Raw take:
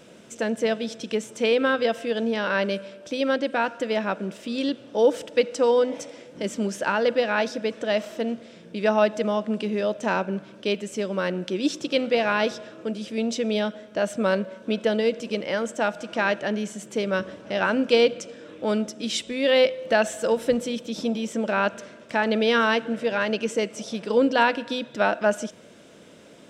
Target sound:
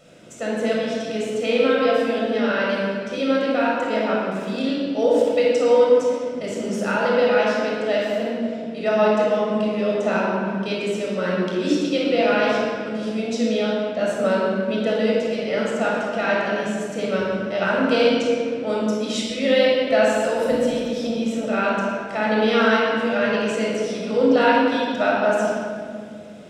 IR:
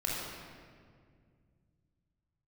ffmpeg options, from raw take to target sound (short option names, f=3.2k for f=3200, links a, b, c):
-filter_complex "[1:a]atrim=start_sample=2205[a];[0:a][a]afir=irnorm=-1:irlink=0,volume=-3dB"